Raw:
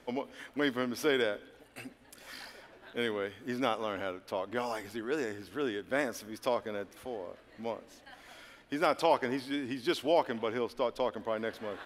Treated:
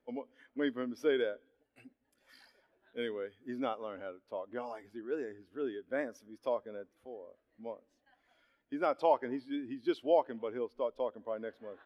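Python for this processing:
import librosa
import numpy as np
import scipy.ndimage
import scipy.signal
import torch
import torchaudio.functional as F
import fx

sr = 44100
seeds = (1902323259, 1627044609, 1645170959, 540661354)

y = fx.high_shelf(x, sr, hz=5400.0, db=6.0, at=(2.29, 3.62))
y = fx.spectral_expand(y, sr, expansion=1.5)
y = F.gain(torch.from_numpy(y), -3.0).numpy()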